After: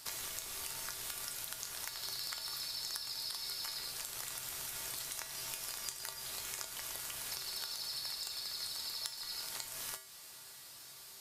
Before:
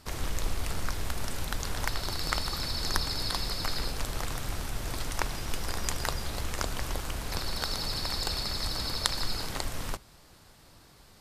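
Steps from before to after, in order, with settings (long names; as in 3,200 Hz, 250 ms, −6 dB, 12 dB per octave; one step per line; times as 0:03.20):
spectral tilt +4 dB per octave
downward compressor 6 to 1, threshold −37 dBFS, peak gain reduction 23 dB
tuned comb filter 130 Hz, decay 0.49 s, harmonics odd, mix 80%
level +9 dB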